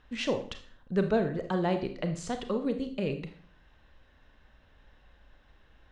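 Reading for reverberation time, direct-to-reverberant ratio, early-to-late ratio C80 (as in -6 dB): 0.50 s, 7.0 dB, 14.5 dB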